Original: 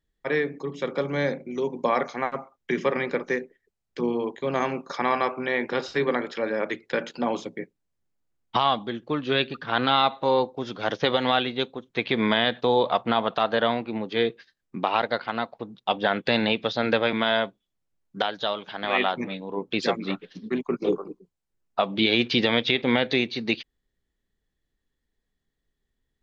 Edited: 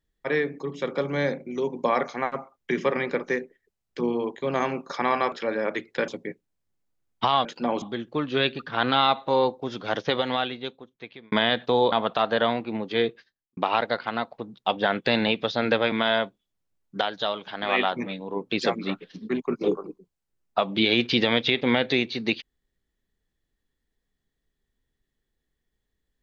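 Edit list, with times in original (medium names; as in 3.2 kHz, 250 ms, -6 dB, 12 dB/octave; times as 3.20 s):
5.32–6.27 s: delete
7.03–7.40 s: move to 8.77 s
10.80–12.27 s: fade out
12.87–13.13 s: delete
14.29–14.78 s: studio fade out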